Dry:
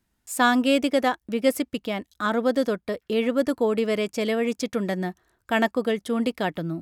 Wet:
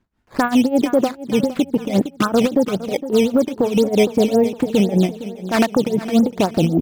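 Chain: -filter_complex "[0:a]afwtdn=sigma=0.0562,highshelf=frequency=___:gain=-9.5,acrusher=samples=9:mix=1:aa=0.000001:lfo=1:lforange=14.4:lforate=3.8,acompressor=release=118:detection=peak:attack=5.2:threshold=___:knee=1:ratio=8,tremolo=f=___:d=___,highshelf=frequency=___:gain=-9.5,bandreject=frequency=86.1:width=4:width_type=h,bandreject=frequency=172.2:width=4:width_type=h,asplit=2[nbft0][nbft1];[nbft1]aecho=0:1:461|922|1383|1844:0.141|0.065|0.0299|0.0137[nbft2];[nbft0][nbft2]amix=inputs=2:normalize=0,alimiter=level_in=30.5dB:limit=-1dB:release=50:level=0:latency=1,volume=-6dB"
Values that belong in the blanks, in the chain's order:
3300, -31dB, 5, 0.89, 8000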